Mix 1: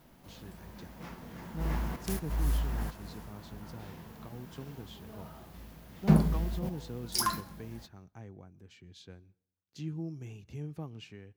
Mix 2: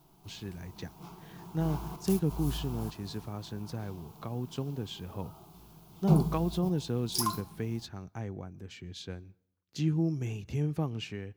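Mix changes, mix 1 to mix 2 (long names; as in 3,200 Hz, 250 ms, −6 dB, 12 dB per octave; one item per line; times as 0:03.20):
speech +9.5 dB
background: add phaser with its sweep stopped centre 360 Hz, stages 8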